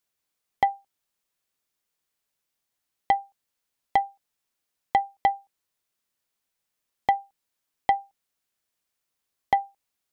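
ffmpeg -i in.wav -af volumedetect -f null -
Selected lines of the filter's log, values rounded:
mean_volume: -32.3 dB
max_volume: -8.2 dB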